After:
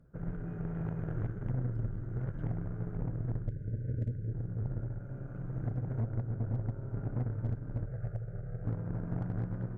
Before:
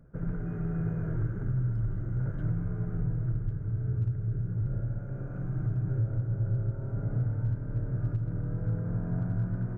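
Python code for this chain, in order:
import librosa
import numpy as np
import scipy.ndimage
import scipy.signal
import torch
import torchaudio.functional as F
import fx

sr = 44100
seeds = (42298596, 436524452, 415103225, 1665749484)

y = fx.cheby_harmonics(x, sr, harmonics=(4, 6), levels_db=(-11, -13), full_scale_db=-20.0)
y = fx.spec_box(y, sr, start_s=3.49, length_s=0.83, low_hz=630.0, high_hz=1400.0, gain_db=-25)
y = fx.fixed_phaser(y, sr, hz=1000.0, stages=6, at=(7.86, 8.64))
y = y * 10.0 ** (-5.5 / 20.0)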